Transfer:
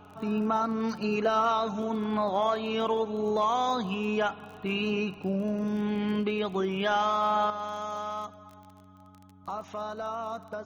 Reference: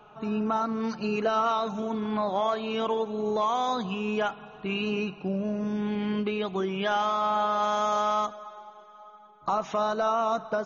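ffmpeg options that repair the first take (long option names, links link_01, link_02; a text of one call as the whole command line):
ffmpeg -i in.wav -af "adeclick=threshold=4,bandreject=frequency=94.2:width_type=h:width=4,bandreject=frequency=188.4:width_type=h:width=4,bandreject=frequency=282.6:width_type=h:width=4,asetnsamples=nb_out_samples=441:pad=0,asendcmd='7.5 volume volume 9dB',volume=0dB" out.wav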